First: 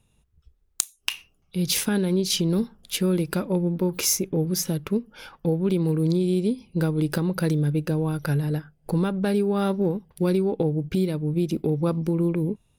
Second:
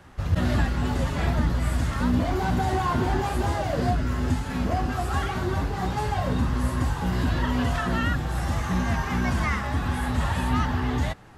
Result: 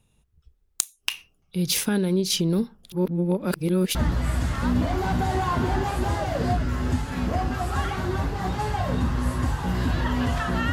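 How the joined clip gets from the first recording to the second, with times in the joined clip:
first
0:02.92–0:03.95: reverse
0:03.95: continue with second from 0:01.33

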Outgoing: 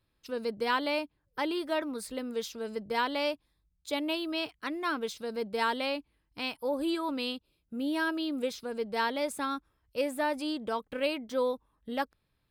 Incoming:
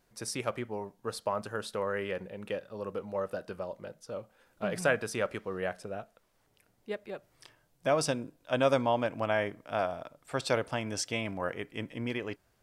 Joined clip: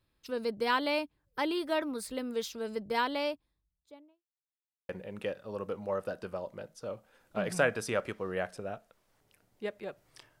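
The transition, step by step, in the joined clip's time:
outgoing
0:02.88–0:04.24: fade out and dull
0:04.24–0:04.89: silence
0:04.89: continue with incoming from 0:02.15

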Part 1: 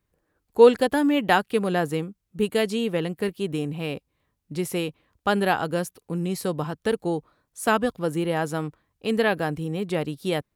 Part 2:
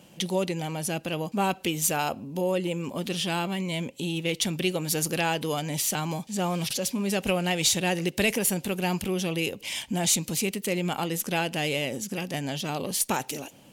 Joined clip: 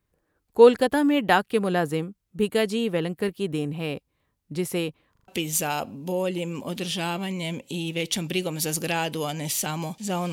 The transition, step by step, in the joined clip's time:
part 1
0:05.12: stutter in place 0.04 s, 4 plays
0:05.28: continue with part 2 from 0:01.57

